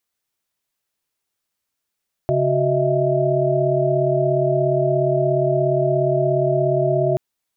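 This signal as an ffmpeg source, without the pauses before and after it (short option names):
-f lavfi -i "aevalsrc='0.0891*(sin(2*PI*138.59*t)+sin(2*PI*369.99*t)+sin(2*PI*622.25*t)+sin(2*PI*659.26*t))':d=4.88:s=44100"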